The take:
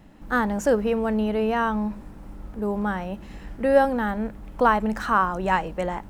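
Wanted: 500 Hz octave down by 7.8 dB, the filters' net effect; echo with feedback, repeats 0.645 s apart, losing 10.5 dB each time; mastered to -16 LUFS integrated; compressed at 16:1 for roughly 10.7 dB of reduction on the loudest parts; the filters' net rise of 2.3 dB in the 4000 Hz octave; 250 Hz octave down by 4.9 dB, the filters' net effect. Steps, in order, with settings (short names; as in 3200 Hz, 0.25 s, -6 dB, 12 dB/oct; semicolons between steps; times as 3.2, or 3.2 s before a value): bell 250 Hz -4.5 dB; bell 500 Hz -8 dB; bell 4000 Hz +3.5 dB; compressor 16:1, threshold -26 dBFS; feedback echo 0.645 s, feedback 30%, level -10.5 dB; gain +16.5 dB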